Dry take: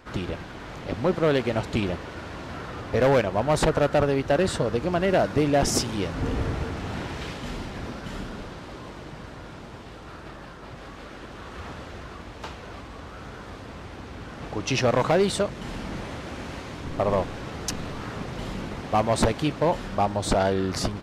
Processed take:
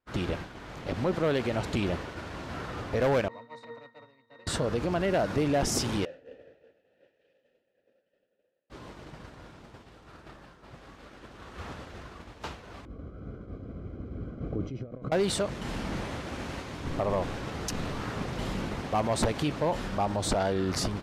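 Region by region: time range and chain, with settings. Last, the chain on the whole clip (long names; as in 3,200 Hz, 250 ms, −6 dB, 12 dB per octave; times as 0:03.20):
0:03.28–0:04.47: high-pass filter 450 Hz + resonances in every octave A#, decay 0.42 s + every bin compressed towards the loudest bin 2 to 1
0:06.05–0:08.70: formant filter e + parametric band 2,100 Hz −6.5 dB 0.53 octaves
0:12.85–0:15.12: compressor whose output falls as the input rises −30 dBFS + moving average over 49 samples
whole clip: downward expander −33 dBFS; high-shelf EQ 11,000 Hz +3 dB; brickwall limiter −20 dBFS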